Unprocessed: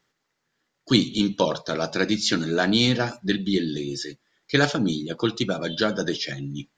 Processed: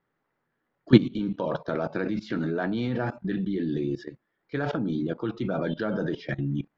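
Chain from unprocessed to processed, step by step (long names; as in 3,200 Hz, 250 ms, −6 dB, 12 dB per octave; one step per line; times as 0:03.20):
low-pass filter 1,500 Hz 12 dB per octave
output level in coarse steps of 17 dB
level +6.5 dB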